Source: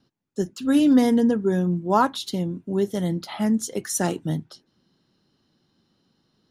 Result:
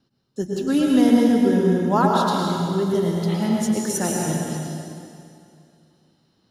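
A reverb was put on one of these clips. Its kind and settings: plate-style reverb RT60 2.5 s, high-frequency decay 0.9×, pre-delay 95 ms, DRR -2.5 dB; trim -1.5 dB

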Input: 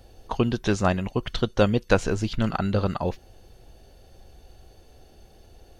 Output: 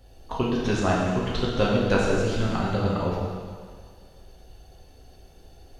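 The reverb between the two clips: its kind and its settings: plate-style reverb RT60 1.9 s, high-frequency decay 0.95×, DRR -5 dB; trim -5.5 dB

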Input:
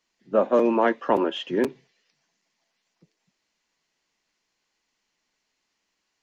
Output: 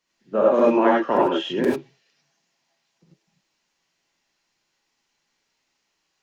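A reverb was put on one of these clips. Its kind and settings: gated-style reverb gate 120 ms rising, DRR -4.5 dB; trim -2.5 dB

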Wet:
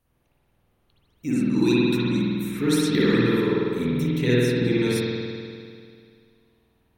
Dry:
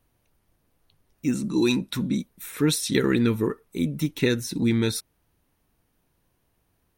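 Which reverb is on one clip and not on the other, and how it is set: spring tank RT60 2.3 s, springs 49 ms, chirp 30 ms, DRR -8 dB; trim -5 dB

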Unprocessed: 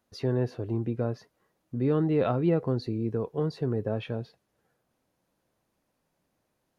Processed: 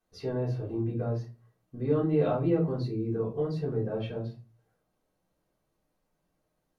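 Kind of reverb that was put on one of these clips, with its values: simulated room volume 130 m³, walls furnished, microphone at 3.7 m; trim -11.5 dB

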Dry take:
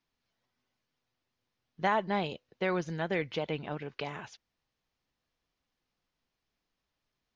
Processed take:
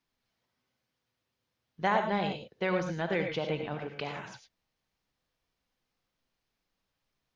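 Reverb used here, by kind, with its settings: gated-style reverb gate 130 ms rising, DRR 4.5 dB

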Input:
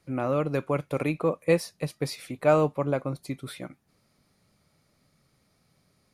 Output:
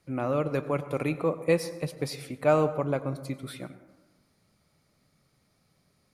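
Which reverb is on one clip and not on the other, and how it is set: plate-style reverb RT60 1.2 s, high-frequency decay 0.35×, pre-delay 80 ms, DRR 13 dB; trim -1.5 dB

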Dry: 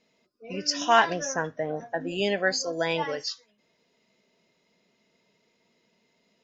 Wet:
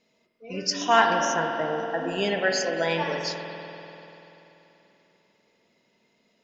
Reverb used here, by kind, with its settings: spring tank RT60 3.4 s, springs 48 ms, chirp 75 ms, DRR 2.5 dB

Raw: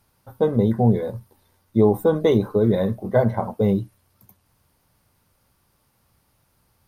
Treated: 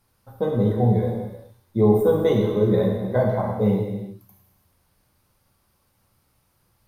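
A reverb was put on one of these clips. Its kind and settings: gated-style reverb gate 430 ms falling, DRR -1 dB; trim -4.5 dB

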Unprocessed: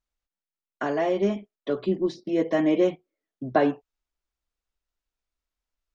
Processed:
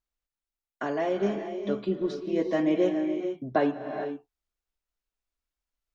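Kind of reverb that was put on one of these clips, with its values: gated-style reverb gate 480 ms rising, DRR 7 dB; trim -3.5 dB

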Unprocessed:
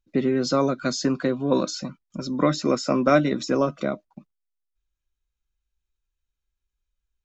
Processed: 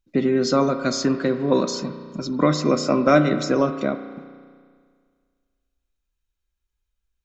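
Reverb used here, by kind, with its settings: spring tank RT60 1.9 s, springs 33 ms, chirp 55 ms, DRR 8.5 dB; trim +2 dB

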